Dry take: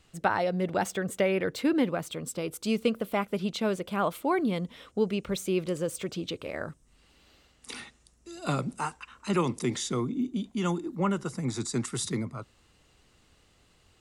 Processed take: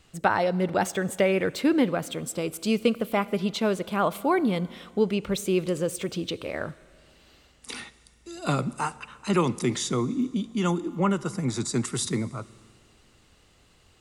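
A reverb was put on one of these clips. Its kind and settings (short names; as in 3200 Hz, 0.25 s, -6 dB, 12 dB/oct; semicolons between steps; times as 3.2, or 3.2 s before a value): Schroeder reverb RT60 2.1 s, combs from 27 ms, DRR 19 dB; gain +3.5 dB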